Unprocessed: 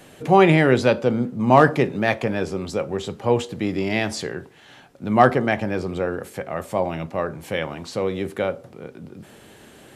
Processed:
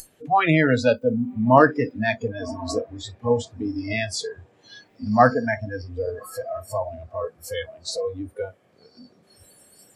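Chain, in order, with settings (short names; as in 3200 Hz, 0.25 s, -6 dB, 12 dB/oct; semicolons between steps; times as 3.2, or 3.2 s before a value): upward compressor, threshold -19 dBFS; diffused feedback echo 1.098 s, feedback 65%, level -11 dB; spectral noise reduction 29 dB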